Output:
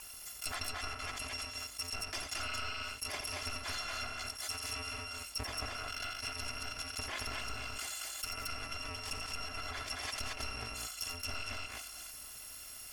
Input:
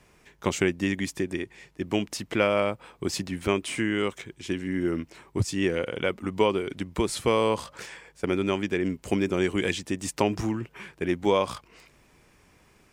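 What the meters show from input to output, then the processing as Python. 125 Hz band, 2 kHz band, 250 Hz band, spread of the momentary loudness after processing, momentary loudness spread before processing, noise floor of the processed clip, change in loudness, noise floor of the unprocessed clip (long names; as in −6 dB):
−15.5 dB, −7.5 dB, −26.5 dB, 3 LU, 10 LU, −49 dBFS, −11.5 dB, −61 dBFS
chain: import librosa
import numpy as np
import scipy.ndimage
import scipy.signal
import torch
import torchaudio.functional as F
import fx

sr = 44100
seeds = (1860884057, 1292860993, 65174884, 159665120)

p1 = fx.bit_reversed(x, sr, seeds[0], block=256)
p2 = fx.low_shelf(p1, sr, hz=470.0, db=-11.0)
p3 = fx.notch(p2, sr, hz=3900.0, q=8.0)
p4 = 10.0 ** (-20.0 / 20.0) * np.tanh(p3 / 10.0 ** (-20.0 / 20.0))
p5 = fx.env_lowpass_down(p4, sr, base_hz=1800.0, full_db=-25.0)
p6 = p5 + fx.echo_multitap(p5, sr, ms=(87, 224), db=(-10.0, -3.0), dry=0)
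p7 = fx.env_flatten(p6, sr, amount_pct=50)
y = F.gain(torch.from_numpy(p7), -1.0).numpy()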